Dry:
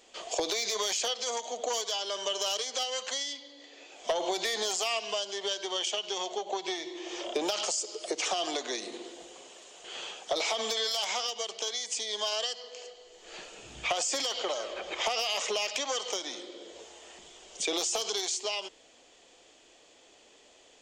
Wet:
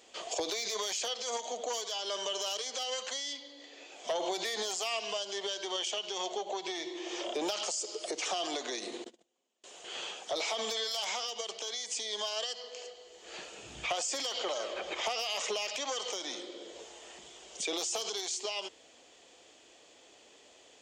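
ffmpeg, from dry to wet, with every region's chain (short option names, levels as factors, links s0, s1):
-filter_complex "[0:a]asettb=1/sr,asplit=3[s0][s1][s2];[s0]atrim=end=9.044[s3];[s1]atrim=start=9.04:end=9.64,asetpts=PTS-STARTPTS,afade=t=in:d=0.004:c=qsin,afade=t=out:st=0.596:d=0.004:c=qsin,agate=range=0.0224:threshold=0.00631:ratio=16:release=100:detection=peak,equalizer=f=230:w=4.4:g=14.5[s4];[s2]atrim=start=9.636[s5];[s3][s4]acrossfade=d=0.004:c1=hsin:c2=qsin[s6];[s6][s5]acrossfade=d=0.004:c1=qsin:c2=hsin,highpass=56,alimiter=level_in=1.19:limit=0.0631:level=0:latency=1:release=41,volume=0.841"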